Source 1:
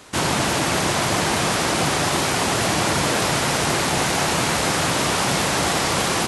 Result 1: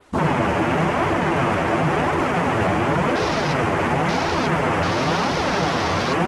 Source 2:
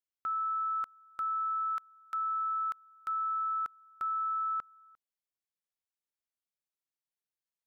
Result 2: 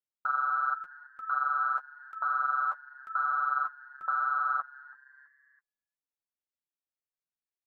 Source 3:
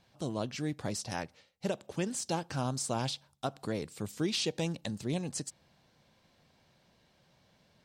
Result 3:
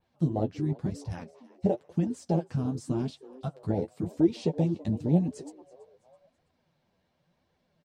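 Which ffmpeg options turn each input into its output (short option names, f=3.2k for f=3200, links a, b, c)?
-filter_complex "[0:a]afwtdn=0.0501,asplit=2[a][b];[b]acompressor=threshold=-36dB:ratio=6,volume=2.5dB[c];[a][c]amix=inputs=2:normalize=0,adynamicequalizer=threshold=0.00794:dfrequency=6100:dqfactor=1.3:tfrequency=6100:tqfactor=1.3:attack=5:release=100:ratio=0.375:range=2:mode=boostabove:tftype=bell,asplit=2[d][e];[e]adelay=12,volume=-7.5dB[f];[d][f]amix=inputs=2:normalize=0,acontrast=84,alimiter=limit=-7.5dB:level=0:latency=1,highshelf=f=2.4k:g=-9,asplit=4[g][h][i][j];[h]adelay=329,afreqshift=130,volume=-21.5dB[k];[i]adelay=658,afreqshift=260,volume=-29dB[l];[j]adelay=987,afreqshift=390,volume=-36.6dB[m];[g][k][l][m]amix=inputs=4:normalize=0,flanger=delay=1.9:depth=8.9:regen=23:speed=0.93:shape=triangular"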